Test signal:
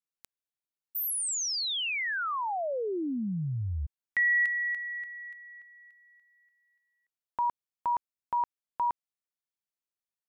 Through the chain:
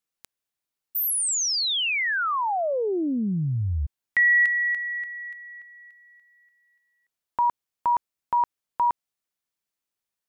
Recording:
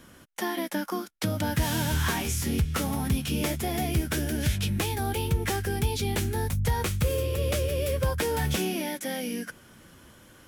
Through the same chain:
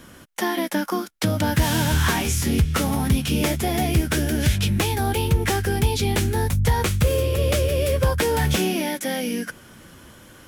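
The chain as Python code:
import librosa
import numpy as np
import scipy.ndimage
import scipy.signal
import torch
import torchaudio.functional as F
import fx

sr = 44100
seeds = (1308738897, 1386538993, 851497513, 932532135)

y = fx.doppler_dist(x, sr, depth_ms=0.12)
y = y * 10.0 ** (6.5 / 20.0)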